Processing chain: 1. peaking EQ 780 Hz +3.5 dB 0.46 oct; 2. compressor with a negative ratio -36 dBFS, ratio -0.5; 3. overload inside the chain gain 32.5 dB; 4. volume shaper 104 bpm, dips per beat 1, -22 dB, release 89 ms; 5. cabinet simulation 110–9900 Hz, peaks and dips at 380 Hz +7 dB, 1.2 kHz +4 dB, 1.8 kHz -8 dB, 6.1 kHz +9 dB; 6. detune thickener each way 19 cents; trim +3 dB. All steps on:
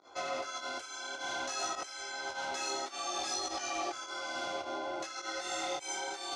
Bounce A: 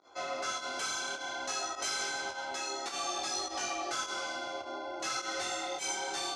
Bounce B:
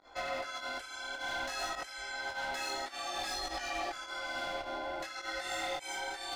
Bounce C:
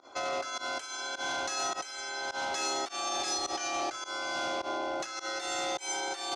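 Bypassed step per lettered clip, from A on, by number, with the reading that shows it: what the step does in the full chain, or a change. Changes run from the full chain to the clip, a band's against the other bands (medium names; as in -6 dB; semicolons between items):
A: 2, 500 Hz band -2.0 dB; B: 5, 8 kHz band -5.5 dB; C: 6, crest factor change -1.5 dB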